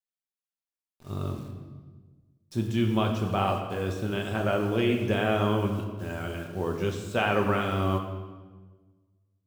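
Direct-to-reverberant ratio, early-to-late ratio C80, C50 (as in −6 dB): 1.5 dB, 7.5 dB, 6.0 dB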